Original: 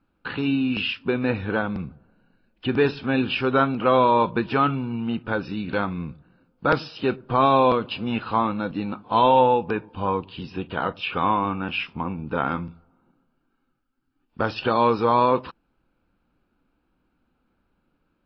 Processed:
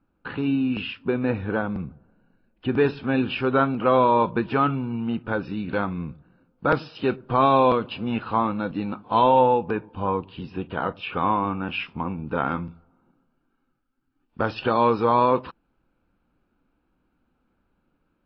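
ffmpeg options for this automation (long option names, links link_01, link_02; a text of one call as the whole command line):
ffmpeg -i in.wav -af "asetnsamples=nb_out_samples=441:pad=0,asendcmd='2.75 lowpass f 2300;6.95 lowpass f 4200;7.88 lowpass f 2400;8.59 lowpass f 3700;9.24 lowpass f 2000;11.7 lowpass f 3300',lowpass=frequency=1500:poles=1" out.wav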